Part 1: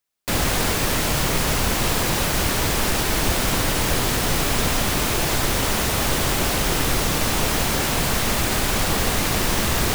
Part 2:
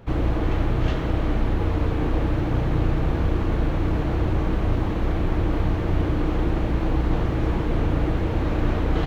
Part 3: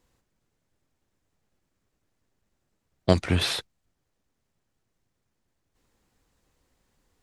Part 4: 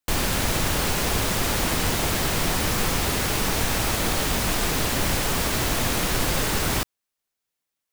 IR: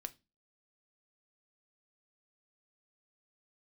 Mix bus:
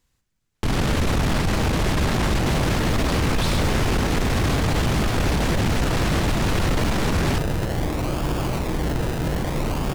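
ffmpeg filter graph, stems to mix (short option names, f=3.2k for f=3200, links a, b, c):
-filter_complex "[0:a]equalizer=f=140:w=1.5:g=8.5,acrusher=samples=31:mix=1:aa=0.000001:lfo=1:lforange=18.6:lforate=0.61,adelay=2150,volume=-6.5dB[a];[1:a]adelay=1850,volume=-5dB[b];[2:a]equalizer=f=510:t=o:w=2.4:g=-10,volume=2.5dB[c];[3:a]aemphasis=mode=reproduction:type=bsi,acontrast=88,adelay=550,volume=1dB[d];[a][b][c][d]amix=inputs=4:normalize=0,aeval=exprs='0.299*(abs(mod(val(0)/0.299+3,4)-2)-1)':c=same,alimiter=limit=-15dB:level=0:latency=1:release=12"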